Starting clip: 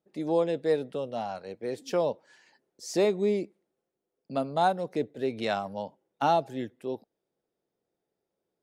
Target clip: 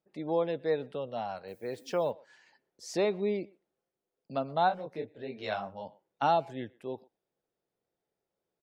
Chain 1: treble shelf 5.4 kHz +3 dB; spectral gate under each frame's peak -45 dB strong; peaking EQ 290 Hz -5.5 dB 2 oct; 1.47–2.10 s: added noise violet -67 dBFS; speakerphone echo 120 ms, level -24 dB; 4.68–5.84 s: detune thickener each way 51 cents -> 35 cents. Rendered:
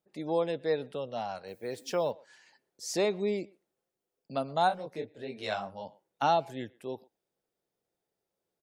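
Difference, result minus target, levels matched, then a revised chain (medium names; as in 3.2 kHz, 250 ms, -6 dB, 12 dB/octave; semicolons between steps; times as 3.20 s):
8 kHz band +6.5 dB
treble shelf 5.4 kHz -8 dB; spectral gate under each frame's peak -45 dB strong; peaking EQ 290 Hz -5.5 dB 2 oct; 1.47–2.10 s: added noise violet -67 dBFS; speakerphone echo 120 ms, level -24 dB; 4.68–5.84 s: detune thickener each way 51 cents -> 35 cents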